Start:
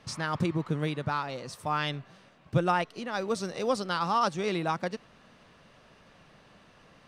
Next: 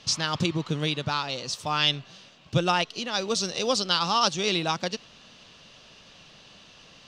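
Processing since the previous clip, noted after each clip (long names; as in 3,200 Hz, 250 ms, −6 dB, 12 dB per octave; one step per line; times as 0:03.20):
flat-topped bell 4,400 Hz +12.5 dB
level +1.5 dB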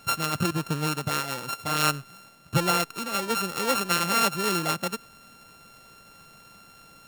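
samples sorted by size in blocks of 32 samples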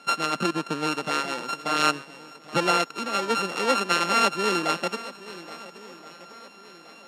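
high-pass filter 220 Hz 24 dB per octave
high-frequency loss of the air 73 metres
feedback echo with a long and a short gap by turns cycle 1,372 ms, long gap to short 1.5 to 1, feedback 35%, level −16.5 dB
level +3.5 dB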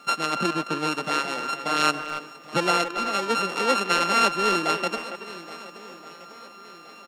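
steady tone 1,200 Hz −52 dBFS
bit reduction 11 bits
far-end echo of a speakerphone 280 ms, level −8 dB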